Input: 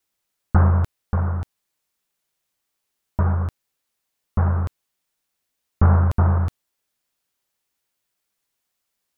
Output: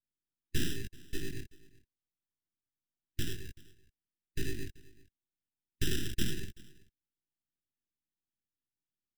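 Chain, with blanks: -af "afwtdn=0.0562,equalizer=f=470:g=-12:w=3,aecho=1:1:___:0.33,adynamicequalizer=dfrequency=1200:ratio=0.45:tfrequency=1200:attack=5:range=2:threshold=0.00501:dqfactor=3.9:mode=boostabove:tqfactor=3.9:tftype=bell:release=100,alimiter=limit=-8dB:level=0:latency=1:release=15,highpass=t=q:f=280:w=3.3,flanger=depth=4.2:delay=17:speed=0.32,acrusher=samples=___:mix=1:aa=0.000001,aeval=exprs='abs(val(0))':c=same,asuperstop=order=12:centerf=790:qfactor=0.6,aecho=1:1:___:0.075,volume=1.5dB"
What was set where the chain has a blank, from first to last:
5.7, 20, 382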